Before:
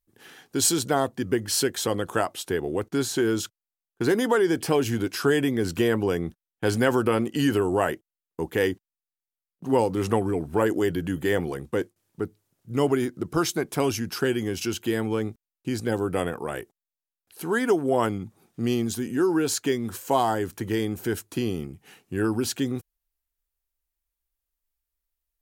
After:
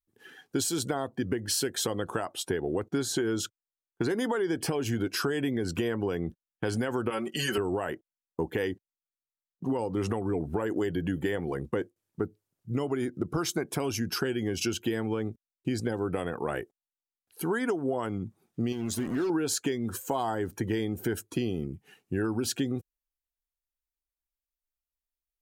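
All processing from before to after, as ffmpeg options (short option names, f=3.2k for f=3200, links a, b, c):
-filter_complex "[0:a]asettb=1/sr,asplit=3[a][b][c];[a]atrim=end=7.104[d];[b]atrim=start=7.1:end=7.58,asetpts=PTS-STARTPTS,afade=t=in:d=0.004:c=qsin,afade=t=out:st=0.476:d=0.004:c=qsin,lowshelf=f=470:g=-11.5,aecho=1:1:5.3:0.82,atrim=end_sample=21168[e];[c]atrim=start=7.576[f];[d][e]acrossfade=d=0.004:c1=hsin:c2=qsin[g];[g][f]acrossfade=d=0.004:c1=qsin:c2=hsin,asettb=1/sr,asplit=3[h][i][j];[h]atrim=end=18.724[k];[i]atrim=start=18.72:end=19.3,asetpts=PTS-STARTPTS,afade=t=in:d=0.004:c=qsin,afade=t=out:st=0.576:d=0.004:c=qsin,acompressor=threshold=-30dB:ratio=2:attack=3.2:release=140:knee=1:detection=peak,acrusher=bits=5:mix=0:aa=0.5[l];[j]atrim=start=19.296[m];[k][l]acrossfade=d=0.004:c1=hsin:c2=qsin[n];[n][m]acrossfade=d=0.004:c1=qsin:c2=hsin,afftdn=nr=13:nf=-44,alimiter=limit=-16dB:level=0:latency=1:release=290,acompressor=threshold=-28dB:ratio=6,volume=2.5dB"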